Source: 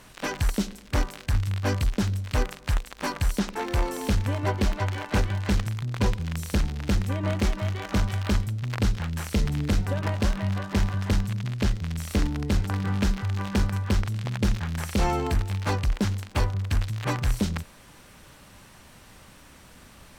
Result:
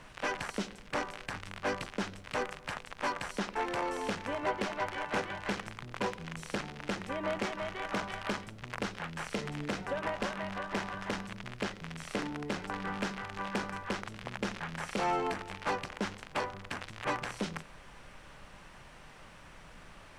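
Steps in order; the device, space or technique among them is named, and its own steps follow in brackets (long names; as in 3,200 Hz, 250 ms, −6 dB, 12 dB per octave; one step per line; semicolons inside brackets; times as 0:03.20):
aircraft cabin announcement (band-pass filter 440–4,100 Hz; soft clipping −23.5 dBFS, distortion −16 dB; brown noise bed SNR 17 dB)
graphic EQ with 15 bands 160 Hz +7 dB, 4,000 Hz −4 dB, 10,000 Hz +6 dB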